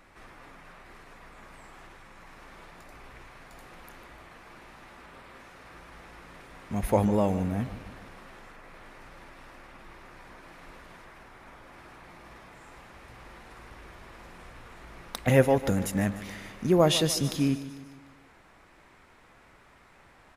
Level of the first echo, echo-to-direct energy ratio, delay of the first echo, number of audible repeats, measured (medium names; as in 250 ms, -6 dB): -14.5 dB, -13.0 dB, 149 ms, 4